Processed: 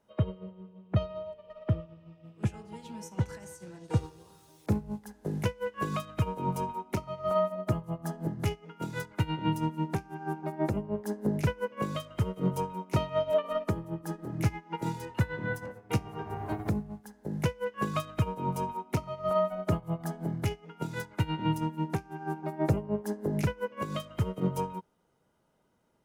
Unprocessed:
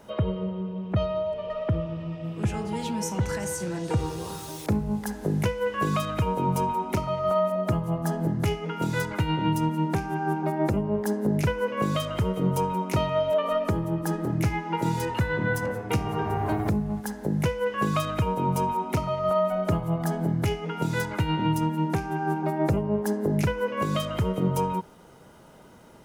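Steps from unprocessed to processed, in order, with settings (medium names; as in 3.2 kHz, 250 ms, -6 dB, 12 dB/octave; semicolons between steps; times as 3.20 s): upward expansion 2.5:1, over -34 dBFS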